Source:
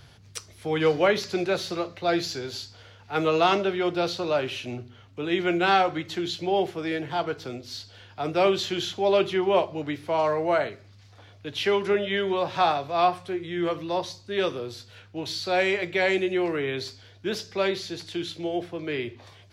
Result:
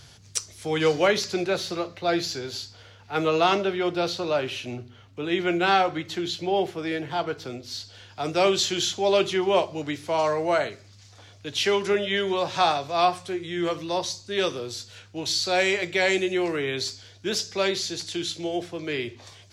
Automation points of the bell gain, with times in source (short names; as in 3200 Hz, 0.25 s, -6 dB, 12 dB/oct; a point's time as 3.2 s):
bell 7100 Hz 1.4 oct
1.05 s +12 dB
1.45 s +3 dB
7.64 s +3 dB
8.25 s +12.5 dB